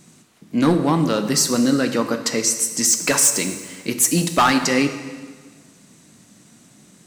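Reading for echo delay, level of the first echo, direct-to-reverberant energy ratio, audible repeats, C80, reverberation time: no echo audible, no echo audible, 7.0 dB, no echo audible, 10.5 dB, 1.5 s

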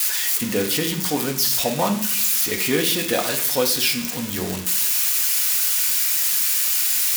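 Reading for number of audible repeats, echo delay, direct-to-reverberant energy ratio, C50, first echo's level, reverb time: no echo audible, no echo audible, 1.5 dB, 9.5 dB, no echo audible, 0.65 s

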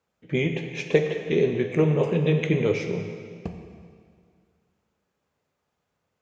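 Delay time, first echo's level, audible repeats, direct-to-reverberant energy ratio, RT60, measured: no echo audible, no echo audible, no echo audible, 4.5 dB, 2.1 s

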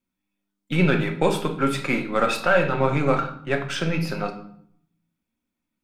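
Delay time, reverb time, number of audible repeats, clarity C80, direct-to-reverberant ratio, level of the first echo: no echo audible, 0.65 s, no echo audible, 13.5 dB, 4.0 dB, no echo audible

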